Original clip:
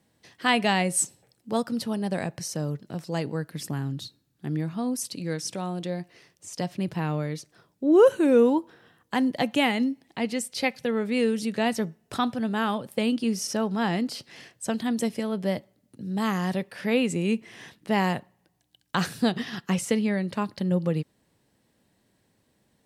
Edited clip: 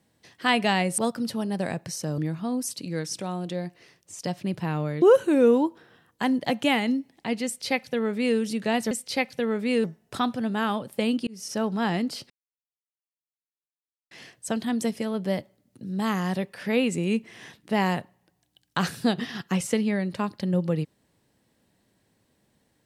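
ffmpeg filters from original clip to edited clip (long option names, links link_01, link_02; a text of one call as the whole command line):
ffmpeg -i in.wav -filter_complex "[0:a]asplit=8[link_01][link_02][link_03][link_04][link_05][link_06][link_07][link_08];[link_01]atrim=end=0.982[link_09];[link_02]atrim=start=1.498:end=2.702[link_10];[link_03]atrim=start=4.518:end=7.362[link_11];[link_04]atrim=start=7.938:end=11.832[link_12];[link_05]atrim=start=10.368:end=11.302[link_13];[link_06]atrim=start=11.828:end=13.26,asetpts=PTS-STARTPTS,afade=type=out:start_time=1.428:duration=0.004:curve=hsin[link_14];[link_07]atrim=start=13.26:end=14.29,asetpts=PTS-STARTPTS,afade=type=in:duration=0.34,afade=type=out:start_time=1.026:duration=0.004:curve=hsin,apad=pad_dur=1.81[link_15];[link_08]atrim=start=14.29,asetpts=PTS-STARTPTS,afade=type=in:duration=0.004:curve=hsin[link_16];[link_09][link_10]acrossfade=duration=0.004:curve1=hsin:curve2=hsin[link_17];[link_17][link_11]acrossfade=duration=0.004:curve1=hsin:curve2=hsin[link_18];[link_18][link_12]acrossfade=duration=0.004:curve1=hsin:curve2=hsin[link_19];[link_19][link_13]acrossfade=duration=0.004:curve1=hsin:curve2=hsin[link_20];[link_14][link_15][link_16]concat=n=3:v=0:a=1[link_21];[link_20][link_21]acrossfade=duration=0.004:curve1=hsin:curve2=hsin" out.wav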